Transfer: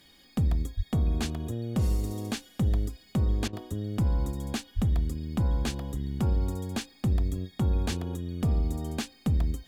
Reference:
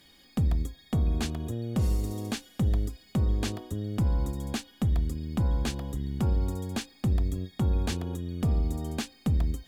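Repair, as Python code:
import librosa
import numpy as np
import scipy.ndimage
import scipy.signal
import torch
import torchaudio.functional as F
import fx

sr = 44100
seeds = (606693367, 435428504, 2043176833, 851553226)

y = fx.highpass(x, sr, hz=140.0, slope=24, at=(0.76, 0.88), fade=0.02)
y = fx.highpass(y, sr, hz=140.0, slope=24, at=(4.75, 4.87), fade=0.02)
y = fx.fix_interpolate(y, sr, at_s=(3.48,), length_ms=48.0)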